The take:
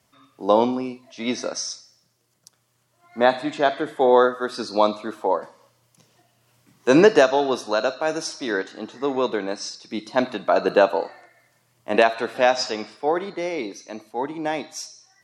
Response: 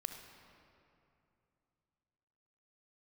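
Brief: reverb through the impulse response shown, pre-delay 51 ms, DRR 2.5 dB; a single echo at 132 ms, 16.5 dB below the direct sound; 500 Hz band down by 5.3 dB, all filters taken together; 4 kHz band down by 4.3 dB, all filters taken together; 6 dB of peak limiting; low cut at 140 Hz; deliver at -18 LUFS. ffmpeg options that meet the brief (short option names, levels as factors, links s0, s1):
-filter_complex "[0:a]highpass=140,equalizer=f=500:t=o:g=-6.5,equalizer=f=4000:t=o:g=-5.5,alimiter=limit=0.266:level=0:latency=1,aecho=1:1:132:0.15,asplit=2[s0][s1];[1:a]atrim=start_sample=2205,adelay=51[s2];[s1][s2]afir=irnorm=-1:irlink=0,volume=0.891[s3];[s0][s3]amix=inputs=2:normalize=0,volume=2.51"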